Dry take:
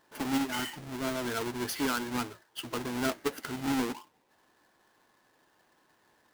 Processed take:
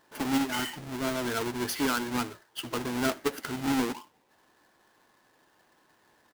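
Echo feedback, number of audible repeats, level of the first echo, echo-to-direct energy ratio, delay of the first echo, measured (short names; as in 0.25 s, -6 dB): no steady repeat, 1, -23.0 dB, -23.0 dB, 78 ms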